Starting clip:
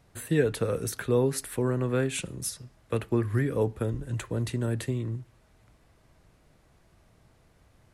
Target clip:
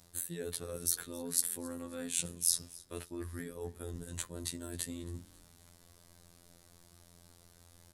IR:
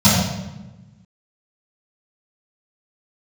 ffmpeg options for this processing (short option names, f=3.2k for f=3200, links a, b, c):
-filter_complex "[0:a]afftfilt=real='hypot(re,im)*cos(PI*b)':imag='0':win_size=2048:overlap=0.75,areverse,acompressor=threshold=-39dB:ratio=12,areverse,adynamicequalizer=threshold=0.00126:dfrequency=350:dqfactor=1.5:tfrequency=350:tqfactor=1.5:attack=5:release=100:ratio=0.375:range=1.5:mode=cutabove:tftype=bell,aexciter=amount=4.3:drive=3.1:freq=3.5k,asplit=4[a][b][c][d];[b]adelay=269,afreqshift=-52,volume=-22dB[e];[c]adelay=538,afreqshift=-104,volume=-29.7dB[f];[d]adelay=807,afreqshift=-156,volume=-37.5dB[g];[a][e][f][g]amix=inputs=4:normalize=0,volume=2dB"